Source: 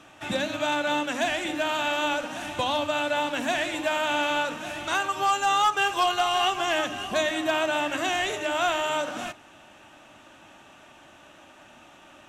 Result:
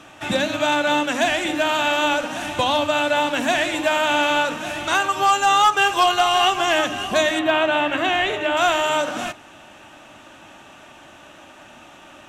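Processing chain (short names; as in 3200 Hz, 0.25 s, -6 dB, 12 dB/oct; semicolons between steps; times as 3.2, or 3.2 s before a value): 7.39–8.57 band shelf 7800 Hz -13 dB; gain +6.5 dB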